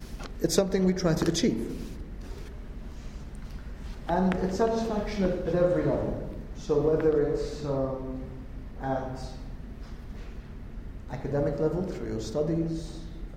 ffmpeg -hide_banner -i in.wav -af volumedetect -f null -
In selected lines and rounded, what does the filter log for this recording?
mean_volume: -29.3 dB
max_volume: -11.7 dB